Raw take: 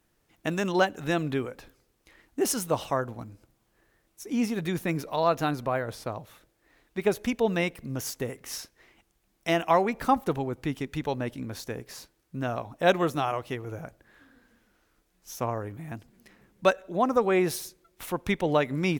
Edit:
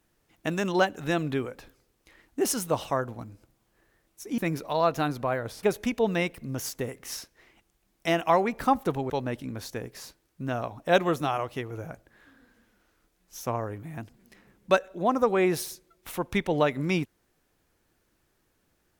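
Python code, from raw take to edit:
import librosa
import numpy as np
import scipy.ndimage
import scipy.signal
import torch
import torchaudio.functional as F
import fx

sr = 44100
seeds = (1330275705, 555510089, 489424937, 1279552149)

y = fx.edit(x, sr, fx.cut(start_s=4.38, length_s=0.43),
    fx.cut(start_s=6.06, length_s=0.98),
    fx.cut(start_s=10.51, length_s=0.53), tone=tone)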